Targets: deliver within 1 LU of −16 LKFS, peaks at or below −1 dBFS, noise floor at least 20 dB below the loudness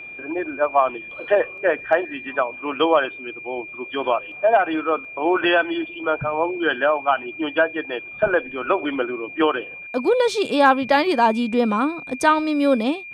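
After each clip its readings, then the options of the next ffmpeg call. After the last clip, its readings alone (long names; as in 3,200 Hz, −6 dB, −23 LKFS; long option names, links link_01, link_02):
interfering tone 2,400 Hz; level of the tone −34 dBFS; integrated loudness −21.0 LKFS; sample peak −4.5 dBFS; target loudness −16.0 LKFS
→ -af "bandreject=frequency=2400:width=30"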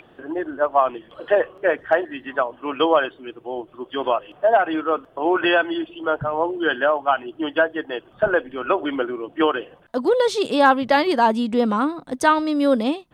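interfering tone none found; integrated loudness −21.0 LKFS; sample peak −4.5 dBFS; target loudness −16.0 LKFS
→ -af "volume=5dB,alimiter=limit=-1dB:level=0:latency=1"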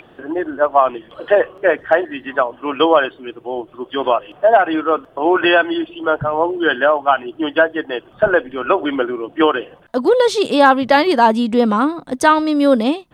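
integrated loudness −16.0 LKFS; sample peak −1.0 dBFS; background noise floor −47 dBFS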